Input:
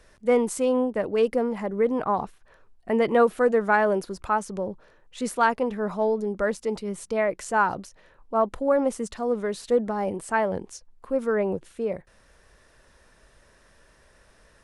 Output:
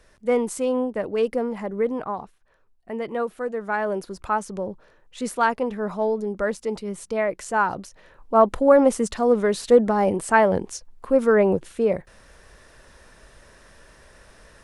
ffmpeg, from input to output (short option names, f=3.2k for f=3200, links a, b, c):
-af "volume=14dB,afade=t=out:st=1.83:d=0.41:silence=0.446684,afade=t=in:st=3.56:d=0.74:silence=0.398107,afade=t=in:st=7.71:d=0.73:silence=0.473151"